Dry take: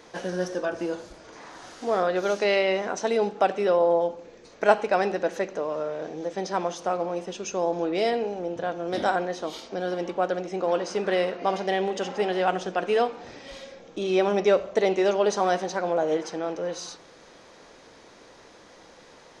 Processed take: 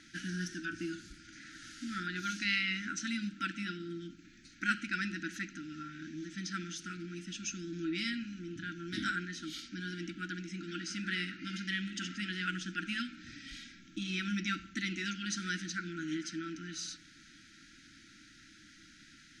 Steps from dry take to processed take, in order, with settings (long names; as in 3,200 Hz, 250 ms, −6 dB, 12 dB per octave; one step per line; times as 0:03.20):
linear-phase brick-wall band-stop 340–1,300 Hz
level −3 dB